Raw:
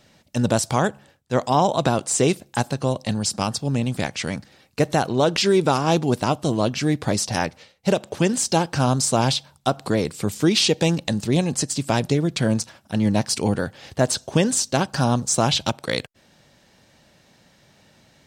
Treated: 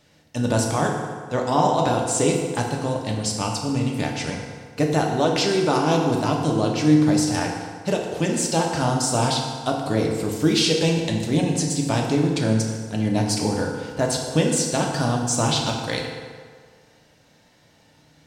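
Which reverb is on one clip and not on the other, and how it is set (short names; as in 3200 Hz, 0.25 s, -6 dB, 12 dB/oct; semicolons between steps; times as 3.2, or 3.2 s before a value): FDN reverb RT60 1.8 s, low-frequency decay 0.85×, high-frequency decay 0.65×, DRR -0.5 dB; gain -4 dB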